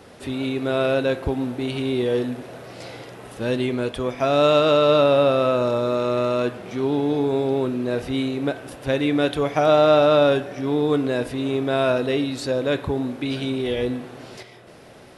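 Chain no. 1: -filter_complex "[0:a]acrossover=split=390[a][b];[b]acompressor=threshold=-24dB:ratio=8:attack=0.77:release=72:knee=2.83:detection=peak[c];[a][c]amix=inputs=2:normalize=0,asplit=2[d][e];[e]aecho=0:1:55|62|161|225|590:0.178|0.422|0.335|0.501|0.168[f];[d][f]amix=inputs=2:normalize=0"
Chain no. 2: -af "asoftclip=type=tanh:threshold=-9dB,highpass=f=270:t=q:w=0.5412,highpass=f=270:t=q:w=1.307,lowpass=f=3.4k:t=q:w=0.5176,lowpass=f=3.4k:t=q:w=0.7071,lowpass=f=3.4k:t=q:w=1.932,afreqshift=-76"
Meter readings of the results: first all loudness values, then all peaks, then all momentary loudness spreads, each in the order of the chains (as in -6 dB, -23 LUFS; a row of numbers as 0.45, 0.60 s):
-23.0, -23.0 LUFS; -8.5, -8.0 dBFS; 9, 15 LU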